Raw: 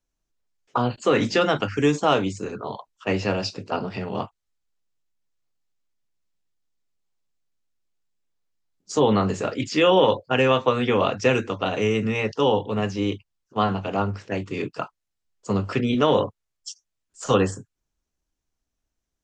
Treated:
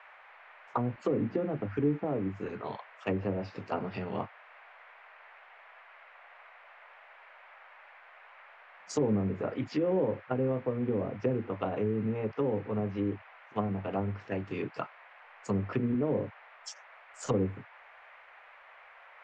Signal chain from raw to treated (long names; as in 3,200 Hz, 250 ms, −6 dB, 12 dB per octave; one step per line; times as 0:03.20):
treble cut that deepens with the level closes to 420 Hz, closed at −18.5 dBFS
noise in a band 580–2,300 Hz −48 dBFS
level −6.5 dB